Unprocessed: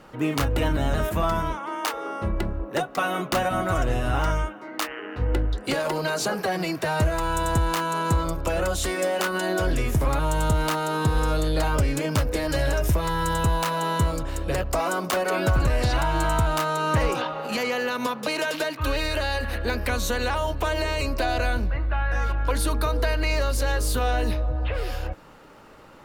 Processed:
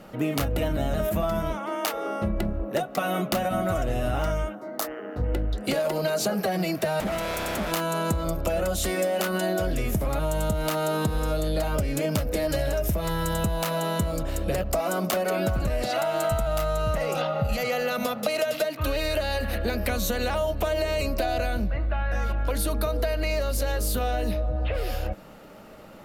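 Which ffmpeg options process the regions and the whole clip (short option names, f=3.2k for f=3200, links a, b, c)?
-filter_complex "[0:a]asettb=1/sr,asplit=3[a][b][c];[a]atrim=end=4.554[d];[b]atrim=start=4.55:end=5.24,asetpts=PTS-STARTPTS,afade=t=in:d=0.004:c=qsin,afade=t=out:st=0.686:d=0.004:c=qsin,equalizer=f=2.6k:t=o:w=1:g=-14,bandreject=f=103.9:t=h:w=4,bandreject=f=207.8:t=h:w=4,bandreject=f=311.7:t=h:w=4,bandreject=f=415.6:t=h:w=4[e];[c]atrim=start=5.236[f];[d][e]acrossfade=d=0.004:c1=hsin:c2=qsin[g];[g][f]acrossfade=d=0.004:c1=qsin:c2=hsin,asettb=1/sr,asplit=3[h][i][j];[h]atrim=end=7.004[k];[i]atrim=start=7:end=7.72,asetpts=PTS-STARTPTS,afade=t=in:d=0.004:c=qsin,afade=t=out:st=0.716:d=0.004:c=qsin,highpass=54,highshelf=f=5.1k:g=-4.5,aeval=exprs='0.0531*(abs(mod(val(0)/0.0531+3,4)-2)-1)':c=same[l];[j]atrim=start=7.716[m];[k][l]acrossfade=d=0.004:c1=hsin:c2=qsin[n];[n][m]acrossfade=d=0.004:c1=qsin:c2=hsin,asettb=1/sr,asplit=3[o][p][q];[o]atrim=end=15.844[r];[p]atrim=start=15.84:end=18.65,asetpts=PTS-STARTPTS,afade=t=in:d=0.004:c=qsin,afade=t=out:st=2.806:d=0.004:c=qsin,aecho=1:1:1.5:0.41,atrim=end_sample=123921,acrossover=split=190[s][t];[s]adelay=470[u];[u][t]amix=inputs=2:normalize=0,atrim=end_sample=123921[v];[q]atrim=start=18.646[w];[r][v]acrossfade=d=0.004:c1=hsin:c2=qsin[x];[x][w]acrossfade=d=0.004:c1=qsin:c2=hsin,equalizer=f=200:t=o:w=0.33:g=9,equalizer=f=630:t=o:w=0.33:g=7,equalizer=f=1k:t=o:w=0.33:g=-6,equalizer=f=1.6k:t=o:w=0.33:g=-3,equalizer=f=12.5k:t=o:w=0.33:g=9,acompressor=threshold=-23dB:ratio=6,volume=1dB"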